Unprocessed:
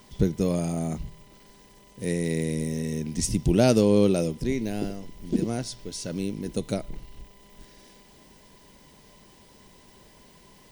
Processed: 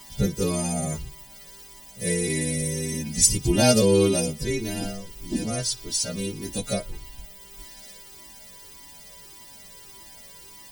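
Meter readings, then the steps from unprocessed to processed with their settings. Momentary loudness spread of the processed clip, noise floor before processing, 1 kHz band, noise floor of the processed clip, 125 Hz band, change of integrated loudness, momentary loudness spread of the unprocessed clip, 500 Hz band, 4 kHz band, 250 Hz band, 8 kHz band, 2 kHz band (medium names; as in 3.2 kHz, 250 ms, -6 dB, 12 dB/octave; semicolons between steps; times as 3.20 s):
24 LU, -54 dBFS, +3.0 dB, -47 dBFS, +0.5 dB, +2.5 dB, 15 LU, +1.0 dB, +9.5 dB, -1.0 dB, +11.5 dB, +6.0 dB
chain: partials quantised in pitch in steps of 2 st; Shepard-style flanger falling 1.7 Hz; trim +6 dB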